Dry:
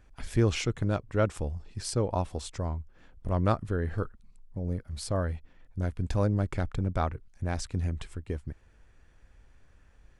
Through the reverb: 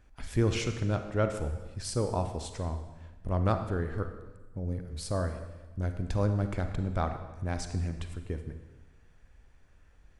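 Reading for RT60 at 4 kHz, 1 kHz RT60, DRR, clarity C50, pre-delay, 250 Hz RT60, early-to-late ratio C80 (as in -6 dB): 1.1 s, 1.2 s, 7.0 dB, 8.0 dB, 34 ms, 1.3 s, 10.0 dB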